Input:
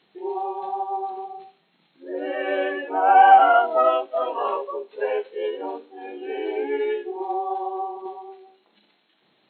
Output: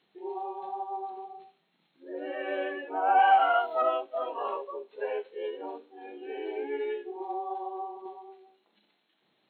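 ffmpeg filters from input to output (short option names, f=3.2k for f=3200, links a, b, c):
-filter_complex "[0:a]asettb=1/sr,asplit=3[a][b][c];[a]atrim=end=3.194[d];[b]atrim=start=3.19:end=3.82,asetpts=PTS-STARTPTS,afade=t=in:d=0.004:c=qsin,afade=t=out:st=0.626:d=0.004:c=qsin,aemphasis=mode=production:type=riaa[e];[c]atrim=start=3.816[f];[d][e]acrossfade=d=0.004:c1=hsin:c2=qsin[g];[g][f]acrossfade=d=0.004:c1=qsin:c2=hsin,volume=-8dB"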